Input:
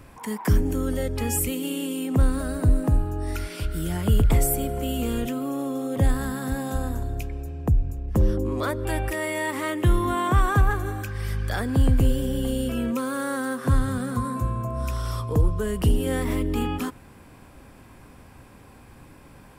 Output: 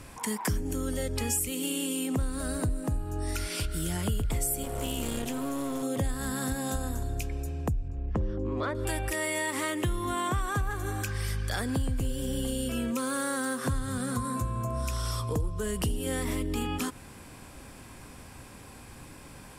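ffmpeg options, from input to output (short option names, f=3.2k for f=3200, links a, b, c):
-filter_complex "[0:a]asettb=1/sr,asplit=3[a][b][c];[a]atrim=end=4.634[d];[b]atrim=start=4.63:end=5.83,asetpts=PTS-STARTPTS,afade=t=in:d=0.004:c=qsin,afade=t=out:st=1.196:d=0.004:c=qsin,aeval=exprs='clip(val(0),-1,0.02)':c=same[e];[c]atrim=start=5.826[f];[d][e]acrossfade=d=0.004:c1=hsin:c2=qsin[g];[g][f]acrossfade=d=0.004:c1=qsin:c2=hsin,asettb=1/sr,asplit=3[h][i][j];[h]atrim=end=7.884[k];[i]atrim=start=7.88:end=8.75,asetpts=PTS-STARTPTS,afade=t=in:d=0.004:c=qsin,afade=t=out:st=0.866:d=0.004:c=qsin,lowpass=2.5k[l];[j]atrim=start=8.746[m];[k][l]acrossfade=d=0.004:c1=hsin:c2=qsin[n];[n][m]acrossfade=d=0.004:c1=qsin:c2=hsin,lowpass=8.3k,aemphasis=mode=production:type=75kf,acompressor=threshold=-28dB:ratio=4"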